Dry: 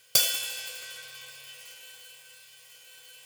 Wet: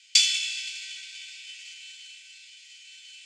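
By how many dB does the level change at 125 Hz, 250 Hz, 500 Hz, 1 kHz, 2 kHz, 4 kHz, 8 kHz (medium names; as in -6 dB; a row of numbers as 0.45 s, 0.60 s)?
under -40 dB, no reading, under -40 dB, under -15 dB, +5.0 dB, +5.5 dB, +2.0 dB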